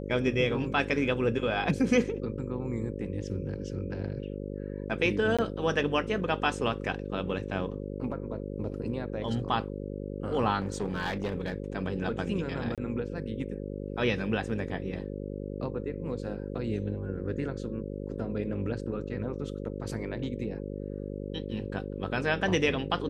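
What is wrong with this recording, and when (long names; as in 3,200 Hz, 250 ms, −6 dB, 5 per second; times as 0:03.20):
mains buzz 50 Hz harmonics 11 −37 dBFS
0:05.37–0:05.39: drop-out 16 ms
0:10.60–0:11.56: clipping −25.5 dBFS
0:12.75–0:12.78: drop-out 27 ms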